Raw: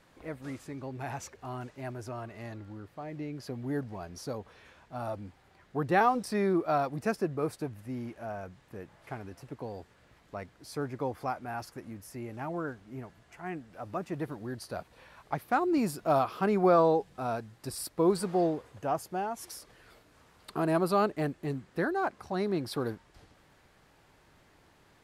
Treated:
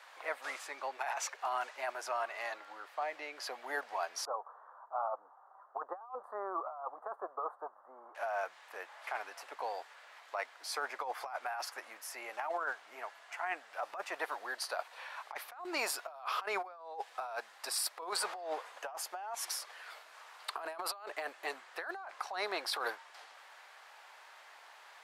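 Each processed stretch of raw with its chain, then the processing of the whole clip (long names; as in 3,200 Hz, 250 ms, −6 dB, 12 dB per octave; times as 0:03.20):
0:04.25–0:08.15: elliptic low-pass filter 1,200 Hz, stop band 50 dB + spectral tilt +4 dB per octave
whole clip: high-pass filter 720 Hz 24 dB per octave; high-shelf EQ 6,300 Hz −8 dB; compressor whose output falls as the input rises −44 dBFS, ratio −1; level +4.5 dB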